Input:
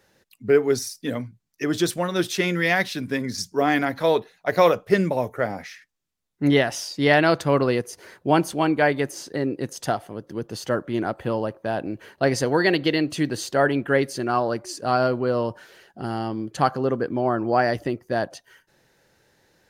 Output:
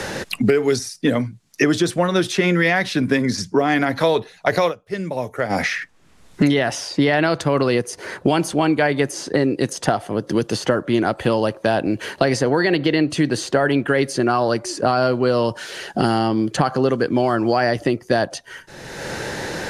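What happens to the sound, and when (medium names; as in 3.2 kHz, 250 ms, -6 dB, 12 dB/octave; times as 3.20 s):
4.58–5.65 s: dip -21.5 dB, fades 0.16 s
whole clip: low-pass 11 kHz 24 dB/octave; peak limiter -13 dBFS; three bands compressed up and down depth 100%; trim +5.5 dB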